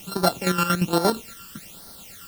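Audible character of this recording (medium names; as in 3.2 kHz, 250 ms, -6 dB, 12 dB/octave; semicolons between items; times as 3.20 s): a buzz of ramps at a fixed pitch in blocks of 32 samples; chopped level 8.6 Hz, depth 65%, duty 45%; a quantiser's noise floor 8-bit, dither triangular; phasing stages 12, 1.2 Hz, lowest notch 660–2600 Hz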